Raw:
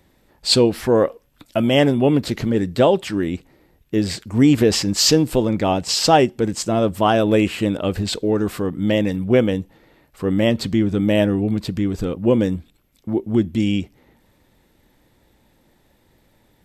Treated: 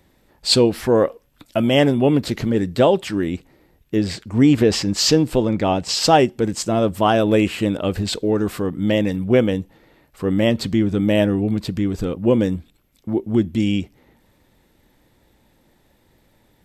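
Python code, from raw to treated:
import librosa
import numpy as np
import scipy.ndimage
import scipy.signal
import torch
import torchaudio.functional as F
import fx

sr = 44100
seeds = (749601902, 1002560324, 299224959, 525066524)

y = fx.high_shelf(x, sr, hz=fx.line((3.97, 6900.0), (6.01, 10000.0)), db=-8.5, at=(3.97, 6.01), fade=0.02)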